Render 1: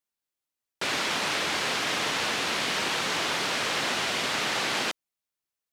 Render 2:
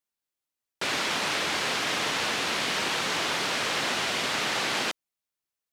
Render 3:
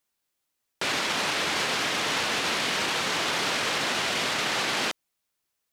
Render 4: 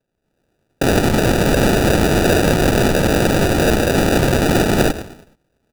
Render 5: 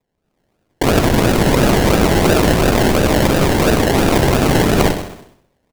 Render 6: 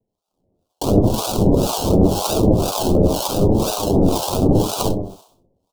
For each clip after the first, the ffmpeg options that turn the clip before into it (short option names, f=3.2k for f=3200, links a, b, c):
-af anull
-af "alimiter=level_in=3dB:limit=-24dB:level=0:latency=1:release=12,volume=-3dB,volume=8.5dB"
-filter_complex "[0:a]asplit=5[a][b][c][d][e];[b]adelay=109,afreqshift=140,volume=-13.5dB[f];[c]adelay=218,afreqshift=280,volume=-21.5dB[g];[d]adelay=327,afreqshift=420,volume=-29.4dB[h];[e]adelay=436,afreqshift=560,volume=-37.4dB[i];[a][f][g][h][i]amix=inputs=5:normalize=0,acrusher=samples=41:mix=1:aa=0.000001,dynaudnorm=f=100:g=5:m=10dB,volume=2.5dB"
-filter_complex "[0:a]acrusher=samples=29:mix=1:aa=0.000001:lfo=1:lforange=17.4:lforate=2.9,asplit=2[a][b];[b]aecho=0:1:64|128|192|256|320|384:0.316|0.171|0.0922|0.0498|0.0269|0.0145[c];[a][c]amix=inputs=2:normalize=0,volume=1dB"
-filter_complex "[0:a]flanger=delay=9:depth=2.5:regen=48:speed=0.83:shape=triangular,acrossover=split=700[a][b];[a]aeval=exprs='val(0)*(1-1/2+1/2*cos(2*PI*2*n/s))':c=same[c];[b]aeval=exprs='val(0)*(1-1/2-1/2*cos(2*PI*2*n/s))':c=same[d];[c][d]amix=inputs=2:normalize=0,asuperstop=centerf=1900:order=4:qfactor=0.76,volume=5.5dB"